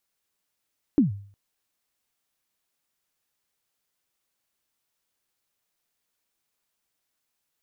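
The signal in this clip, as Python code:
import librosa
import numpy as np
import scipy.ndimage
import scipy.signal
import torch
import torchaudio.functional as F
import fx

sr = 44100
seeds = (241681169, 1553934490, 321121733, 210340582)

y = fx.drum_kick(sr, seeds[0], length_s=0.36, level_db=-12, start_hz=320.0, end_hz=100.0, sweep_ms=133.0, decay_s=0.5, click=False)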